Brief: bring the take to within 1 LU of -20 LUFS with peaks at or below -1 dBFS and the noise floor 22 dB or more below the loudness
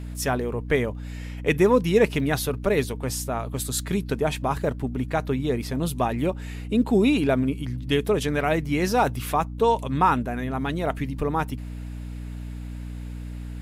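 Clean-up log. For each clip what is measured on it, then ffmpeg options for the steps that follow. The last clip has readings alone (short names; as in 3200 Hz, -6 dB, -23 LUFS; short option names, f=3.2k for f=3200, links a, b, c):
hum 60 Hz; harmonics up to 300 Hz; hum level -32 dBFS; loudness -24.5 LUFS; peak -7.0 dBFS; loudness target -20.0 LUFS
-> -af "bandreject=f=60:t=h:w=6,bandreject=f=120:t=h:w=6,bandreject=f=180:t=h:w=6,bandreject=f=240:t=h:w=6,bandreject=f=300:t=h:w=6"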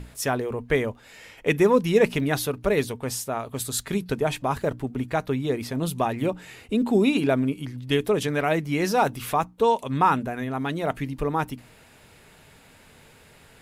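hum none; loudness -25.0 LUFS; peak -7.5 dBFS; loudness target -20.0 LUFS
-> -af "volume=5dB"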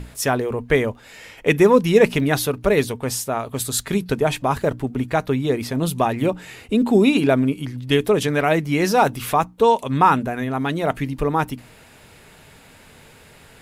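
loudness -20.0 LUFS; peak -2.5 dBFS; noise floor -48 dBFS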